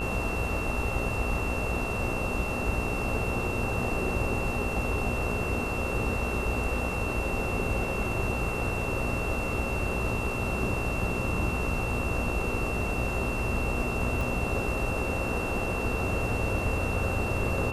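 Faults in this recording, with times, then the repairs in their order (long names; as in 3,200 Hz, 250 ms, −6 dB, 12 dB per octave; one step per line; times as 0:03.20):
mains buzz 60 Hz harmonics 23 −35 dBFS
whistle 2,700 Hz −34 dBFS
0:14.21: click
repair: click removal
hum removal 60 Hz, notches 23
notch filter 2,700 Hz, Q 30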